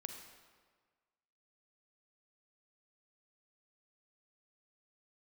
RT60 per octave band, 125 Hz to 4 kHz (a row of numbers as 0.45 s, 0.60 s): 1.5 s, 1.5 s, 1.5 s, 1.6 s, 1.4 s, 1.1 s